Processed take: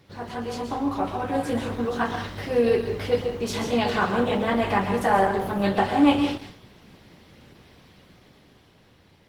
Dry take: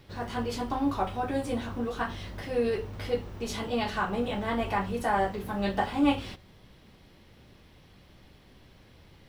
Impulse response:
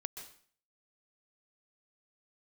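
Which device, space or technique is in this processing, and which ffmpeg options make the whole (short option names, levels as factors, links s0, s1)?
far-field microphone of a smart speaker: -filter_complex "[1:a]atrim=start_sample=2205[s0];[0:a][s0]afir=irnorm=-1:irlink=0,highpass=90,dynaudnorm=f=210:g=13:m=2,volume=1.5" -ar 48000 -c:a libopus -b:a 16k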